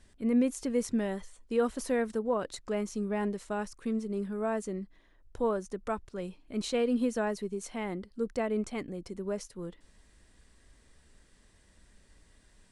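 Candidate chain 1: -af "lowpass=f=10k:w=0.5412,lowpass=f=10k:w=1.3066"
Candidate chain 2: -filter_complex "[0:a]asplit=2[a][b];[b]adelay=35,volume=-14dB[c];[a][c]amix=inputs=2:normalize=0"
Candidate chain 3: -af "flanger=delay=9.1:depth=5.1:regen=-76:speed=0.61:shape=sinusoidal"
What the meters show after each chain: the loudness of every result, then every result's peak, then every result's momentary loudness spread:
-33.0, -33.0, -37.5 LUFS; -17.0, -17.0, -21.5 dBFS; 10, 10, 10 LU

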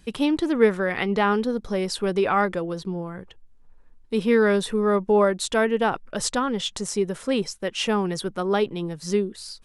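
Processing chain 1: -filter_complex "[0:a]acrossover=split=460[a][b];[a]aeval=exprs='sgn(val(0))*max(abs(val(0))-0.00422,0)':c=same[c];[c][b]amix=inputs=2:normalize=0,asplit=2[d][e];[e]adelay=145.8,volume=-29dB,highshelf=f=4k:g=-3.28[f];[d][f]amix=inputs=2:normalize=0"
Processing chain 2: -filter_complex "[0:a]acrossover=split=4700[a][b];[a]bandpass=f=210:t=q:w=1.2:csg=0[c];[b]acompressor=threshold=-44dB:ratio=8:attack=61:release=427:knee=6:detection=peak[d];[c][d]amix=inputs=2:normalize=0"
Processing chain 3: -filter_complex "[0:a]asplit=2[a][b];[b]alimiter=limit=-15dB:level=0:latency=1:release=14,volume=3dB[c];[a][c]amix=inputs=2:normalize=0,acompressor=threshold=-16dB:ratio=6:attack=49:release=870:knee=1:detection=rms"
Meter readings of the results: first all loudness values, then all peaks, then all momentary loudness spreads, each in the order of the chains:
-24.0, -28.5, -21.5 LUFS; -6.0, -11.5, -7.0 dBFS; 10, 9, 4 LU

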